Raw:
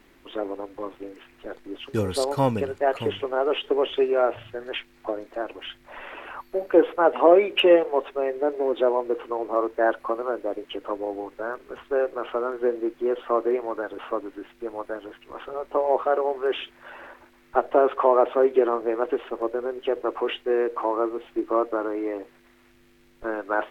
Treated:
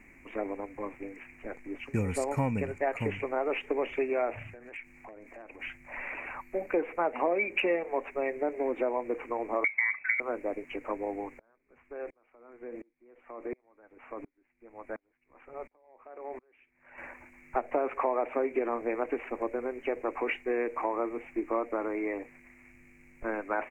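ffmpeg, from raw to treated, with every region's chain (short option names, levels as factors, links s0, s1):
-filter_complex "[0:a]asettb=1/sr,asplit=3[s0][s1][s2];[s0]atrim=end=4.484[s3];[s1]atrim=start=4.48:end=5.6,asetpts=PTS-STARTPTS,afade=t=in:d=0.004:c=qsin,afade=t=out:st=1.116:d=0.004:c=qsin,acompressor=threshold=0.00794:ratio=4:attack=3.2:release=140:knee=1:detection=peak,asoftclip=type=hard:threshold=0.015[s4];[s2]atrim=start=5.596[s5];[s3][s4]acrossfade=d=0.004:c1=hsin:c2=qsin[s6];[s6][s5]acrossfade=d=0.004:c1=qsin:c2=hsin,asettb=1/sr,asplit=3[s7][s8][s9];[s7]atrim=end=9.644[s10];[s8]atrim=start=9.64:end=10.2,asetpts=PTS-STARTPTS,afade=t=in:d=0.004:c=qsin,afade=t=out:st=0.556:d=0.004:c=qsin,agate=range=0.0224:threshold=0.00398:ratio=3:release=100:detection=peak,acompressor=threshold=0.0708:ratio=3:attack=3.2:release=140:knee=1:detection=peak,lowpass=f=2200:t=q:w=0.5098,lowpass=f=2200:t=q:w=0.6013,lowpass=f=2200:t=q:w=0.9,lowpass=f=2200:t=q:w=2.563,afreqshift=-2600[s11];[s9]atrim=start=10.196[s12];[s10][s11]acrossfade=d=0.004:c1=hsin:c2=qsin[s13];[s13][s12]acrossfade=d=0.004:c1=qsin:c2=hsin,asettb=1/sr,asplit=3[s14][s15][s16];[s14]atrim=end=11.394[s17];[s15]atrim=start=11.39:end=16.98,asetpts=PTS-STARTPTS,afade=t=in:d=0.004:c=qsin,afade=t=out:st=5.586:d=0.004:c=qsin,highshelf=f=4100:g=-5.5,acompressor=threshold=0.0631:ratio=6:attack=3.2:release=140:knee=1:detection=peak,aeval=exprs='val(0)*pow(10,-38*if(lt(mod(-1.4*n/s,1),2*abs(-1.4)/1000),1-mod(-1.4*n/s,1)/(2*abs(-1.4)/1000),(mod(-1.4*n/s,1)-2*abs(-1.4)/1000)/(1-2*abs(-1.4)/1000))/20)':c=same[s18];[s16]atrim=start=16.976[s19];[s17][s18]acrossfade=d=0.004:c1=hsin:c2=qsin[s20];[s20][s19]acrossfade=d=0.004:c1=qsin:c2=hsin,firequalizer=gain_entry='entry(250,0);entry(360,-8);entry(760,-4);entry(1400,-8);entry(2300,10);entry(3300,-29);entry(6900,-2);entry(11000,-10)':delay=0.05:min_phase=1,acompressor=threshold=0.0447:ratio=4,volume=1.19"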